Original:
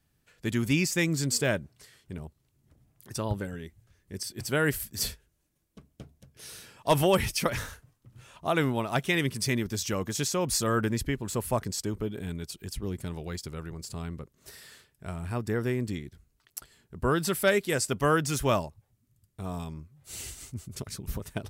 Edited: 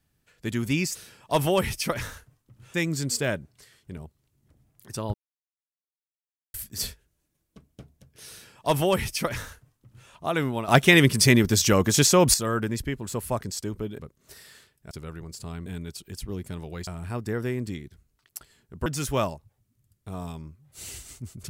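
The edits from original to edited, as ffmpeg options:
-filter_complex "[0:a]asplit=12[a][b][c][d][e][f][g][h][i][j][k][l];[a]atrim=end=0.952[m];[b]atrim=start=6.508:end=8.302[n];[c]atrim=start=0.948:end=3.35,asetpts=PTS-STARTPTS,afade=t=out:st=2.398:d=0.004:c=hsin[o];[d]atrim=start=3.35:end=4.75,asetpts=PTS-STARTPTS,volume=0[p];[e]atrim=start=4.75:end=8.892,asetpts=PTS-STARTPTS,afade=t=in:d=0.004:c=hsin[q];[f]atrim=start=8.888:end=10.552,asetpts=PTS-STARTPTS,volume=10.5dB[r];[g]atrim=start=10.548:end=12.202[s];[h]atrim=start=14.158:end=15.082[t];[i]atrim=start=13.408:end=14.162[u];[j]atrim=start=12.198:end=13.412[v];[k]atrim=start=15.078:end=17.072[w];[l]atrim=start=18.178[x];[m][n]acrossfade=d=0.004:c1=hsin:c2=hsin[y];[o][p][q]concat=n=3:v=0:a=1[z];[y][z]acrossfade=d=0.004:c1=hsin:c2=hsin[aa];[aa][r]acrossfade=d=0.004:c1=hsin:c2=hsin[ab];[ab][s]acrossfade=d=0.004:c1=hsin:c2=hsin[ac];[ac][t]acrossfade=d=0.004:c1=hsin:c2=hsin[ad];[ad][u]acrossfade=d=0.004:c1=hsin:c2=hsin[ae];[ae][v]acrossfade=d=0.004:c1=hsin:c2=hsin[af];[af][w]acrossfade=d=0.004:c1=hsin:c2=hsin[ag];[ag][x]acrossfade=d=0.004:c1=hsin:c2=hsin"

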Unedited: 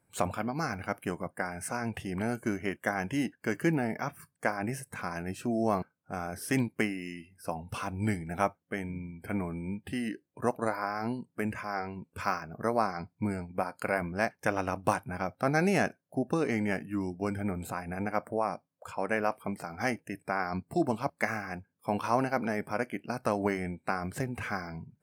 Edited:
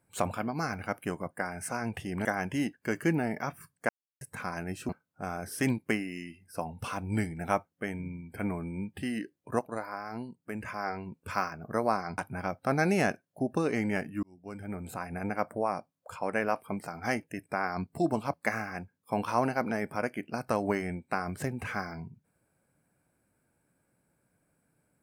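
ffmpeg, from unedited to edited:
-filter_complex "[0:a]asplit=9[a][b][c][d][e][f][g][h][i];[a]atrim=end=2.252[j];[b]atrim=start=2.838:end=4.48,asetpts=PTS-STARTPTS,afade=t=out:st=1.638:d=0.004:c=hsin[k];[c]atrim=start=4.48:end=4.8,asetpts=PTS-STARTPTS,volume=0[l];[d]atrim=start=4.8:end=5.482,asetpts=PTS-STARTPTS,afade=t=in:d=0.004:c=hsin[m];[e]atrim=start=5.788:end=10.492[n];[f]atrim=start=10.488:end=11.532,asetpts=PTS-STARTPTS,volume=-5.5dB[o];[g]atrim=start=11.528:end=13.082[p];[h]atrim=start=14.938:end=16.99,asetpts=PTS-STARTPTS,afade=t=out:st=2.048:d=0.004:c=hsin[q];[i]atrim=start=16.99,asetpts=PTS-STARTPTS,afade=t=in:d=0.89[r];[k][l][m]concat=n=3:v=0:a=1[s];[j][s]acrossfade=d=0.004:c1=hsin:c2=hsin[t];[t][n]acrossfade=d=0.004:c1=hsin:c2=hsin[u];[u][o]acrossfade=d=0.004:c1=hsin:c2=hsin[v];[v][p]acrossfade=d=0.004:c1=hsin:c2=hsin[w];[q][r]concat=n=2:v=0:a=1[x];[w][x]acrossfade=d=0.004:c1=hsin:c2=hsin"

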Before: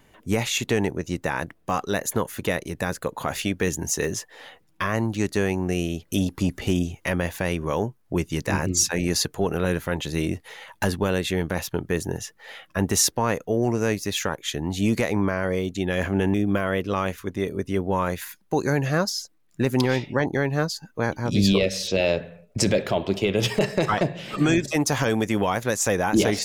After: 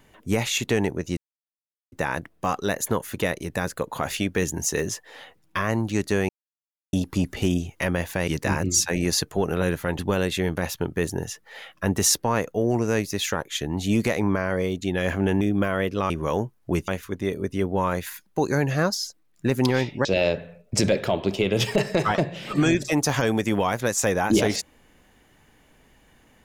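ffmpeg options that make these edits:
-filter_complex "[0:a]asplit=9[a][b][c][d][e][f][g][h][i];[a]atrim=end=1.17,asetpts=PTS-STARTPTS,afade=t=out:st=1.166:d=0.004:c=hsin,apad=pad_dur=0.75[j];[b]atrim=start=1.17:end=5.54,asetpts=PTS-STARTPTS,afade=t=in:d=0.004:c=hsin,afade=t=out:st=4.366:d=0.004:c=hsin[k];[c]atrim=start=5.54:end=6.18,asetpts=PTS-STARTPTS,volume=0[l];[d]atrim=start=6.18:end=7.532,asetpts=PTS-STARTPTS,afade=t=in:d=0.004:c=hsin[m];[e]atrim=start=8.308:end=10.022[n];[f]atrim=start=10.918:end=17.032[o];[g]atrim=start=7.528:end=8.312[p];[h]atrim=start=17.028:end=20.202[q];[i]atrim=start=21.878[r];[j][k][l][m]concat=n=4:v=0:a=1[s];[s][n]acrossfade=d=0.004:c1=hsin:c2=hsin[t];[t][o]acrossfade=d=0.004:c1=hsin:c2=hsin[u];[u][p]acrossfade=d=0.004:c1=hsin:c2=hsin[v];[v][q]acrossfade=d=0.004:c1=hsin:c2=hsin[w];[w][r]acrossfade=d=0.004:c1=hsin:c2=hsin"

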